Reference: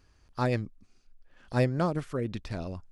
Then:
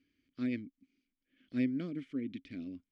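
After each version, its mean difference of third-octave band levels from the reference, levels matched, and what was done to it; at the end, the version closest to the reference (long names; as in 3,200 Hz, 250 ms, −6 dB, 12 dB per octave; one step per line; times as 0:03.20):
7.5 dB: formant filter i
level +4.5 dB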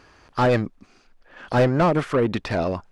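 4.0 dB: mid-hump overdrive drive 24 dB, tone 1,400 Hz, clips at −13.5 dBFS
level +4.5 dB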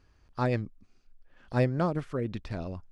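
1.0 dB: high-shelf EQ 6,000 Hz −11 dB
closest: third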